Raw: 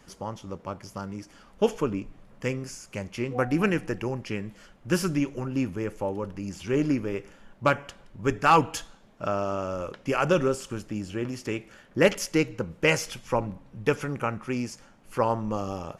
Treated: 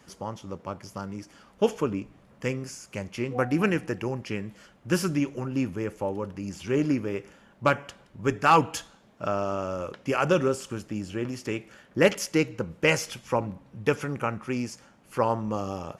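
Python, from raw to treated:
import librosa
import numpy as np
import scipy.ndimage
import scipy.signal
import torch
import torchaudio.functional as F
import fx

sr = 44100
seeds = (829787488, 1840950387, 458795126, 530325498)

y = scipy.signal.sosfilt(scipy.signal.butter(2, 60.0, 'highpass', fs=sr, output='sos'), x)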